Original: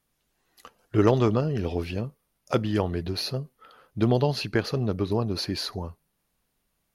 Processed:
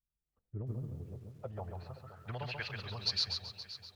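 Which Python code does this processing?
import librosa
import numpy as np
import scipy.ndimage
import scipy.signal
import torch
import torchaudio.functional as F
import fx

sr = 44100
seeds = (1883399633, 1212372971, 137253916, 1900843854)

p1 = fx.tone_stack(x, sr, knobs='10-0-10')
p2 = fx.stretch_vocoder(p1, sr, factor=0.57)
p3 = fx.filter_sweep_lowpass(p2, sr, from_hz=280.0, to_hz=4800.0, start_s=0.89, end_s=3.05, q=2.1)
p4 = p3 + fx.echo_feedback(p3, sr, ms=523, feedback_pct=39, wet_db=-14.0, dry=0)
p5 = fx.echo_crushed(p4, sr, ms=136, feedback_pct=35, bits=11, wet_db=-4.5)
y = F.gain(torch.from_numpy(p5), -3.0).numpy()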